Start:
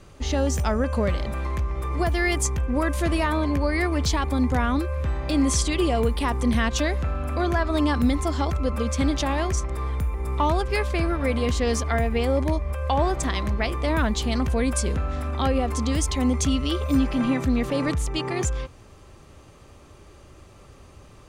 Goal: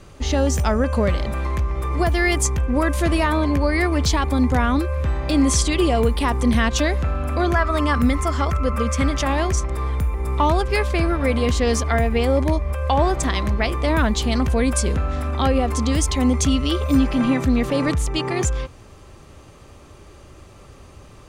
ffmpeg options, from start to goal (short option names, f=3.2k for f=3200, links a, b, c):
-filter_complex "[0:a]asettb=1/sr,asplit=3[a][b][c];[a]atrim=end=7.544[d];[b]atrim=start=7.54:end=9.27,asetpts=PTS-STARTPTS,afade=t=in:d=0.004:c=qsin,afade=t=out:st=1.726:d=0.004:c=qsin,equalizer=f=315:t=o:w=0.33:g=-7,equalizer=f=800:t=o:w=0.33:g=-4,equalizer=f=1.25k:t=o:w=0.33:g=7,equalizer=f=2k:t=o:w=0.33:g=4,equalizer=f=4k:t=o:w=0.33:g=-7[e];[c]atrim=start=9.266[f];[d][e]acrossfade=d=0.004:c1=hsin:c2=qsin[g];[g][f]acrossfade=d=0.004:c1=qsin:c2=hsin,volume=4dB"